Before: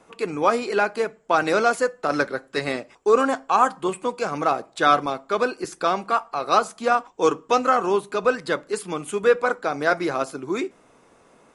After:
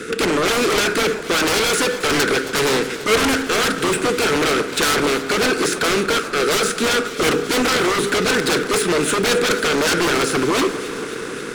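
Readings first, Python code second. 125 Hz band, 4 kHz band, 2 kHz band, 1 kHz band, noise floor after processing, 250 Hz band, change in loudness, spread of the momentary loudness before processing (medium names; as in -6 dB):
+10.0 dB, +15.0 dB, +8.0 dB, -0.5 dB, -29 dBFS, +8.0 dB, +5.0 dB, 8 LU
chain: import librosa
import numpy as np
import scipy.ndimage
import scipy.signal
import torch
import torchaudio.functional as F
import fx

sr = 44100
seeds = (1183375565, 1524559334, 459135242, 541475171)

p1 = fx.bin_compress(x, sr, power=0.6)
p2 = scipy.signal.sosfilt(scipy.signal.ellip(3, 1.0, 40, [460.0, 1400.0], 'bandstop', fs=sr, output='sos'), p1)
p3 = fx.fold_sine(p2, sr, drive_db=20, ceiling_db=-4.0)
p4 = p2 + F.gain(torch.from_numpy(p3), -7.5).numpy()
p5 = fx.power_curve(p4, sr, exponent=1.4)
p6 = fx.echo_alternate(p5, sr, ms=135, hz=1400.0, feedback_pct=86, wet_db=-13)
y = F.gain(torch.from_numpy(p6), -1.0).numpy()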